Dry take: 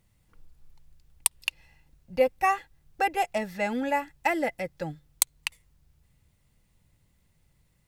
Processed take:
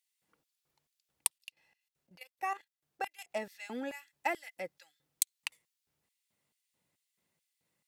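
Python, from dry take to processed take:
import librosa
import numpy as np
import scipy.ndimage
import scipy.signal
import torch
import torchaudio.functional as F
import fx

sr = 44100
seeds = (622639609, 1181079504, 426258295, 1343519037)

y = fx.filter_lfo_highpass(x, sr, shape='square', hz=2.3, low_hz=280.0, high_hz=3000.0, q=0.76)
y = fx.level_steps(y, sr, step_db=13, at=(1.38, 3.31))
y = y * librosa.db_to_amplitude(-7.0)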